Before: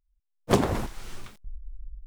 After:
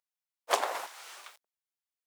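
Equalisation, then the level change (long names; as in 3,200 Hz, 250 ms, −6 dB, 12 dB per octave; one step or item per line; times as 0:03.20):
high-pass filter 620 Hz 24 dB per octave
0.0 dB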